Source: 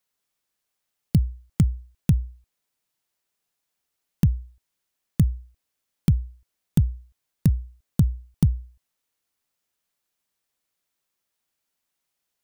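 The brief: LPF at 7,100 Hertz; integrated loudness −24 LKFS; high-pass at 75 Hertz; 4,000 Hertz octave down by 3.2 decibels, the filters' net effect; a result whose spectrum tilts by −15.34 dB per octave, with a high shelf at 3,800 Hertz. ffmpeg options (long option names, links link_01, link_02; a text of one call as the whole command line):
ffmpeg -i in.wav -af "highpass=75,lowpass=7100,highshelf=frequency=3800:gain=7,equalizer=frequency=4000:width_type=o:gain=-8.5,volume=2.5dB" out.wav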